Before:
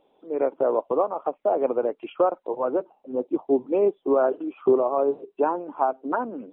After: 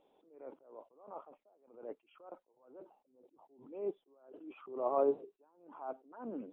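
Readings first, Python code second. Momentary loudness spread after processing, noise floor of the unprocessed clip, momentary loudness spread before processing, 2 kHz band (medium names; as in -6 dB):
24 LU, -67 dBFS, 7 LU, under -20 dB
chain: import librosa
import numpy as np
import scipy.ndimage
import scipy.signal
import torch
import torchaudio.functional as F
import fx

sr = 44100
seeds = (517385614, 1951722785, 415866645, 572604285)

y = fx.attack_slew(x, sr, db_per_s=100.0)
y = y * 10.0 ** (-7.0 / 20.0)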